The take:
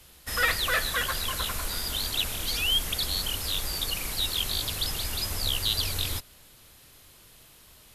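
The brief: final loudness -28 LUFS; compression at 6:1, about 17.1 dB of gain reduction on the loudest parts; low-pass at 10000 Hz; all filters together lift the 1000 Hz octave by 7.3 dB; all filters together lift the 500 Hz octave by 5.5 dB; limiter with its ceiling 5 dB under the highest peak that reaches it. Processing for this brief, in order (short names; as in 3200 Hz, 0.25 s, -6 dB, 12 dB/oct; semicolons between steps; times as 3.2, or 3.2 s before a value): LPF 10000 Hz; bell 500 Hz +4 dB; bell 1000 Hz +8.5 dB; compressor 6:1, threshold -36 dBFS; gain +11.5 dB; limiter -19 dBFS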